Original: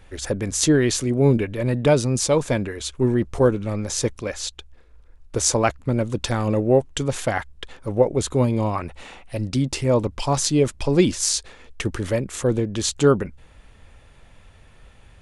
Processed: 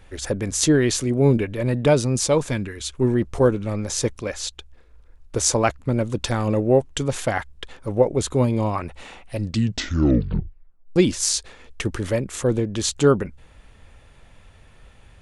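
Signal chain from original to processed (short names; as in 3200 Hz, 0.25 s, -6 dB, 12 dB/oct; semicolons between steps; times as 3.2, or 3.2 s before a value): 2.5–2.9 bell 630 Hz -10 dB 1.4 oct; 9.38 tape stop 1.58 s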